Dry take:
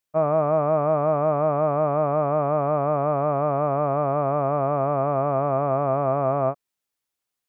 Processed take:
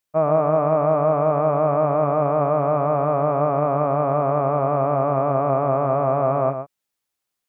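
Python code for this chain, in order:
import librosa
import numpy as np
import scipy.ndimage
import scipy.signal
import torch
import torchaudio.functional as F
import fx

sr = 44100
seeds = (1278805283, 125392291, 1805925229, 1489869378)

y = x + 10.0 ** (-8.5 / 20.0) * np.pad(x, (int(120 * sr / 1000.0), 0))[:len(x)]
y = y * 10.0 ** (2.0 / 20.0)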